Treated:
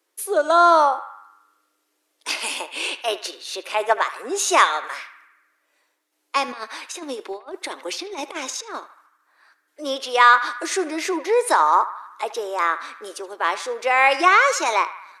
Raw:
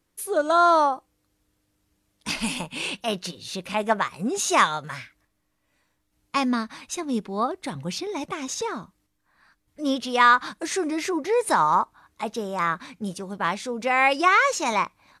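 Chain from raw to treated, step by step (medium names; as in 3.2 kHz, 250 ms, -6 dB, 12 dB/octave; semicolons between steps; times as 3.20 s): steep high-pass 330 Hz 48 dB/octave; 6.48–8.80 s: compressor with a negative ratio -34 dBFS, ratio -0.5; band-passed feedback delay 76 ms, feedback 65%, band-pass 1.6 kHz, level -13 dB; trim +3.5 dB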